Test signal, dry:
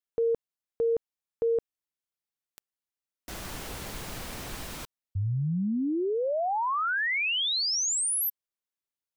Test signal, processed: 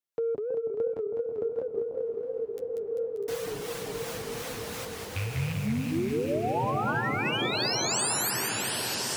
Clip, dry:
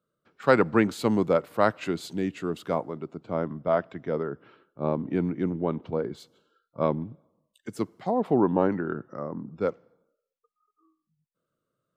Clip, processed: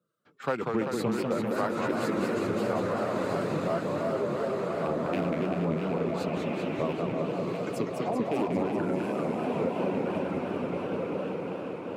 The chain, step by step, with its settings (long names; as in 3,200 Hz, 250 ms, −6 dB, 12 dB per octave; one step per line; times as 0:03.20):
loose part that buzzes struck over −26 dBFS, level −22 dBFS
two-band tremolo in antiphase 2.8 Hz, depth 50%, crossover 680 Hz
feedback delay with all-pass diffusion 1,385 ms, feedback 41%, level −4 dB
flanger 0.27 Hz, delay 5.6 ms, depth 7.7 ms, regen −26%
in parallel at −5 dB: soft clipping −28.5 dBFS
on the sum: high-pass filter 78 Hz
reverb reduction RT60 1.1 s
delay that swaps between a low-pass and a high-pass 323 ms, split 1,000 Hz, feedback 63%, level −7 dB
dynamic equaliser 2,600 Hz, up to −5 dB, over −42 dBFS, Q 0.76
downward compressor 3 to 1, threshold −31 dBFS
feedback echo with a swinging delay time 196 ms, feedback 73%, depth 211 cents, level −4 dB
level +3 dB